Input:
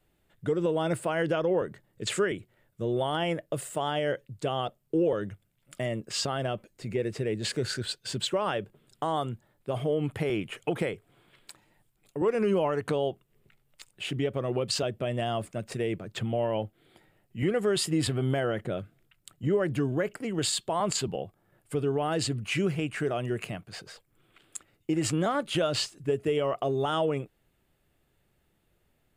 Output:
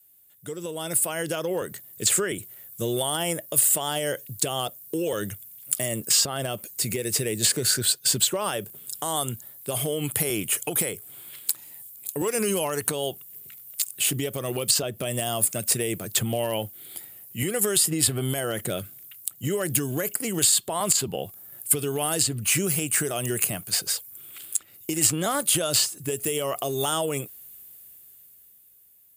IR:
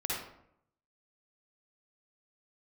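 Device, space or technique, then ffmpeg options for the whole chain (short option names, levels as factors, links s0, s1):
FM broadcast chain: -filter_complex "[0:a]highpass=49,dynaudnorm=f=230:g=13:m=5.62,acrossover=split=1700|4600[s0][s1][s2];[s0]acompressor=threshold=0.178:ratio=4[s3];[s1]acompressor=threshold=0.0178:ratio=4[s4];[s2]acompressor=threshold=0.0126:ratio=4[s5];[s3][s4][s5]amix=inputs=3:normalize=0,aemphasis=mode=production:type=75fm,alimiter=limit=0.335:level=0:latency=1:release=213,asoftclip=type=hard:threshold=0.299,lowpass=f=15000:w=0.5412,lowpass=f=15000:w=1.3066,aemphasis=mode=production:type=75fm,volume=0.447"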